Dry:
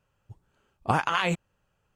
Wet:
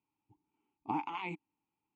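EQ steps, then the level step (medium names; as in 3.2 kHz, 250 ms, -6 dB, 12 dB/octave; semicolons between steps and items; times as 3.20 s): vowel filter u; +1.5 dB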